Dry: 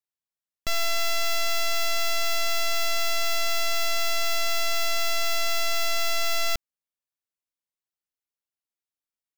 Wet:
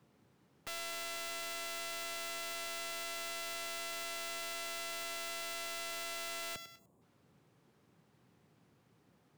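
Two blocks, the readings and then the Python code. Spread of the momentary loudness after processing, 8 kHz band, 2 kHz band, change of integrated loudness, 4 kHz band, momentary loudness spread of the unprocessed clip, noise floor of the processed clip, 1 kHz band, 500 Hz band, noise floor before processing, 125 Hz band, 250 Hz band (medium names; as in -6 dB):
1 LU, -12.0 dB, -13.5 dB, -14.0 dB, -14.5 dB, 1 LU, -70 dBFS, -14.0 dB, -14.0 dB, under -85 dBFS, no reading, -5.5 dB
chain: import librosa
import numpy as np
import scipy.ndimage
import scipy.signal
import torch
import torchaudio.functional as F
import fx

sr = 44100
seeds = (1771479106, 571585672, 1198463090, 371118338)

y = fx.dmg_noise_colour(x, sr, seeds[0], colour='brown', level_db=-57.0)
y = fx.echo_feedback(y, sr, ms=100, feedback_pct=42, wet_db=-20.5)
y = 10.0 ** (-27.0 / 20.0) * np.tanh(y / 10.0 ** (-27.0 / 20.0))
y = fx.spec_box(y, sr, start_s=6.79, length_s=0.23, low_hz=1200.0, high_hz=6600.0, gain_db=-14)
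y = scipy.signal.sosfilt(scipy.signal.butter(4, 120.0, 'highpass', fs=sr, output='sos'), y)
y = fx.notch(y, sr, hz=640.0, q=12.0)
y = (np.mod(10.0 ** (34.0 / 20.0) * y + 1.0, 2.0) - 1.0) / 10.0 ** (34.0 / 20.0)
y = y * 10.0 ** (-1.0 / 20.0)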